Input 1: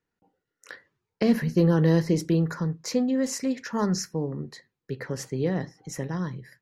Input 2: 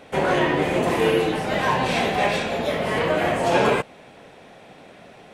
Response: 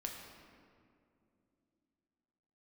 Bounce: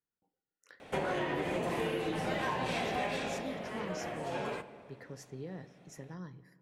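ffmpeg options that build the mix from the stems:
-filter_complex "[0:a]alimiter=limit=-19dB:level=0:latency=1:release=96,volume=-16.5dB,asplit=2[link_01][link_02];[link_02]volume=-11dB[link_03];[1:a]adelay=800,volume=-8dB,afade=type=out:start_time=3.15:duration=0.3:silence=0.223872,asplit=2[link_04][link_05];[link_05]volume=-5.5dB[link_06];[2:a]atrim=start_sample=2205[link_07];[link_03][link_06]amix=inputs=2:normalize=0[link_08];[link_08][link_07]afir=irnorm=-1:irlink=0[link_09];[link_01][link_04][link_09]amix=inputs=3:normalize=0,acompressor=threshold=-30dB:ratio=12"

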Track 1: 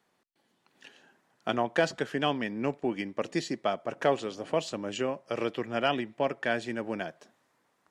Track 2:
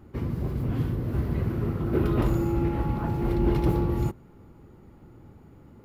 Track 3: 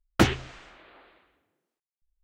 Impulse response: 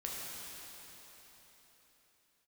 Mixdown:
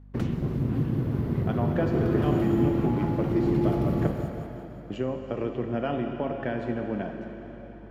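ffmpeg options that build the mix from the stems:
-filter_complex "[0:a]lowpass=frequency=1300:poles=1,volume=-3dB,asplit=3[link_01][link_02][link_03];[link_01]atrim=end=4.07,asetpts=PTS-STARTPTS,afade=type=out:start_time=4.066:duration=0.004:curve=hsin[link_04];[link_02]atrim=start=4.07:end=4.9,asetpts=PTS-STARTPTS,volume=0[link_05];[link_03]atrim=start=4.9,asetpts=PTS-STARTPTS,afade=type=in:duration=0.004:curve=hsin[link_06];[link_04][link_05][link_06]concat=n=3:v=0:a=1,asplit=2[link_07][link_08];[link_08]volume=-4.5dB[link_09];[1:a]highpass=150,aeval=exprs='sgn(val(0))*max(abs(val(0))-0.00668,0)':channel_layout=same,volume=2dB,asplit=3[link_10][link_11][link_12];[link_11]volume=-18.5dB[link_13];[link_12]volume=-11.5dB[link_14];[2:a]alimiter=limit=-13.5dB:level=0:latency=1:release=258,volume=-18dB,asplit=2[link_15][link_16];[link_16]volume=-6.5dB[link_17];[link_07][link_10]amix=inputs=2:normalize=0,highshelf=frequency=5200:gain=-7.5,acompressor=threshold=-35dB:ratio=3,volume=0dB[link_18];[3:a]atrim=start_sample=2205[link_19];[link_09][link_13][link_17]amix=inputs=3:normalize=0[link_20];[link_20][link_19]afir=irnorm=-1:irlink=0[link_21];[link_14]aecho=0:1:177|354|531|708|885|1062|1239:1|0.51|0.26|0.133|0.0677|0.0345|0.0176[link_22];[link_15][link_18][link_21][link_22]amix=inputs=4:normalize=0,lowshelf=frequency=300:gain=12,aeval=exprs='val(0)+0.00447*(sin(2*PI*50*n/s)+sin(2*PI*2*50*n/s)/2+sin(2*PI*3*50*n/s)/3+sin(2*PI*4*50*n/s)/4+sin(2*PI*5*50*n/s)/5)':channel_layout=same"

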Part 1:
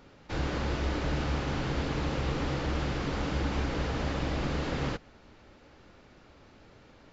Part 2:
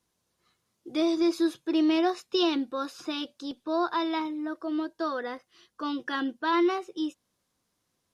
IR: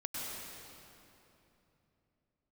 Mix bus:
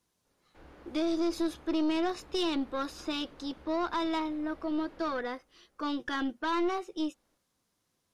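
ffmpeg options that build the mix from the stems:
-filter_complex "[0:a]lowpass=frequency=1600:poles=1,equalizer=frequency=110:width_type=o:width=1.7:gain=-11.5,adelay=250,volume=-17.5dB,asplit=2[link_01][link_02];[link_02]volume=-19dB[link_03];[1:a]alimiter=limit=-20dB:level=0:latency=1:release=108,volume=0.5dB[link_04];[2:a]atrim=start_sample=2205[link_05];[link_03][link_05]afir=irnorm=-1:irlink=0[link_06];[link_01][link_04][link_06]amix=inputs=3:normalize=0,aeval=exprs='(tanh(15.8*val(0)+0.4)-tanh(0.4))/15.8':channel_layout=same"

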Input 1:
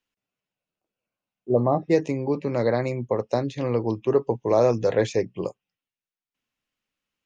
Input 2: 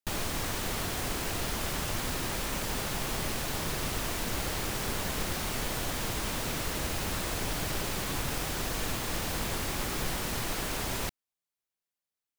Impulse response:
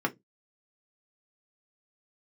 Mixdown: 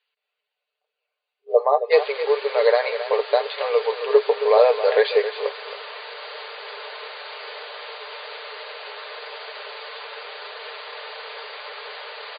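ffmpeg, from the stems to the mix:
-filter_complex "[0:a]aemphasis=mode=reproduction:type=bsi,crystalizer=i=6.5:c=0,volume=1.5dB,asplit=2[link_01][link_02];[link_02]volume=-11dB[link_03];[1:a]bandreject=frequency=740:width=16,adelay=1850,volume=0.5dB[link_04];[link_03]aecho=0:1:269:1[link_05];[link_01][link_04][link_05]amix=inputs=3:normalize=0,afftfilt=real='re*between(b*sr/4096,400,4800)':imag='im*between(b*sr/4096,400,4800)':win_size=4096:overlap=0.75,aecho=1:1:6.7:0.49"

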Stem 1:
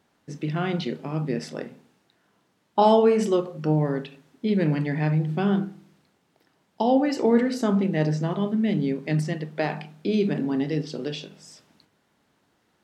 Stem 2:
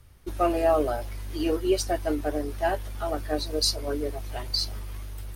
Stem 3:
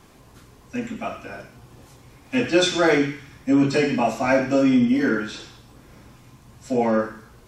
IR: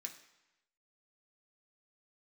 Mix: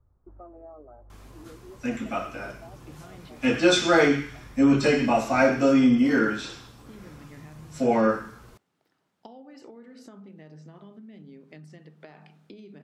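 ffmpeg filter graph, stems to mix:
-filter_complex "[0:a]acompressor=threshold=-23dB:ratio=6,adelay=2450,volume=-8.5dB[link_01];[1:a]lowpass=frequency=1100:width=0.5412,lowpass=frequency=1100:width=1.3066,volume=-11.5dB[link_02];[2:a]adelay=1100,volume=-1dB[link_03];[link_01][link_02]amix=inputs=2:normalize=0,acompressor=threshold=-46dB:ratio=4,volume=0dB[link_04];[link_03][link_04]amix=inputs=2:normalize=0,equalizer=frequency=1300:width_type=o:width=0.35:gain=4"

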